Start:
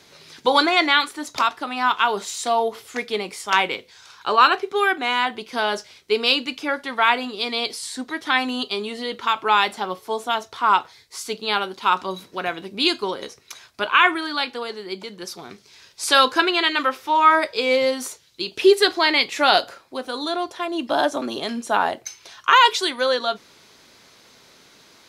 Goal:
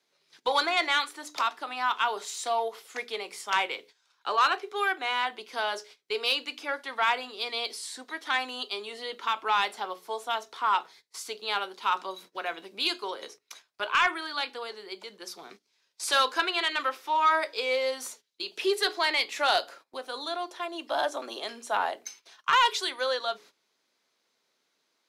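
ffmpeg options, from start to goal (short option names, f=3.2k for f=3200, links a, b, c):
-filter_complex "[0:a]highpass=250,bandreject=f=60:t=h:w=6,bandreject=f=120:t=h:w=6,bandreject=f=180:t=h:w=6,bandreject=f=240:t=h:w=6,bandreject=f=300:t=h:w=6,bandreject=f=360:t=h:w=6,bandreject=f=420:t=h:w=6,agate=range=-17dB:threshold=-42dB:ratio=16:detection=peak,acrossover=split=370|690|1900[a][b][c][d];[a]acompressor=threshold=-48dB:ratio=6[e];[e][b][c][d]amix=inputs=4:normalize=0,asoftclip=type=tanh:threshold=-8dB,volume=-6.5dB"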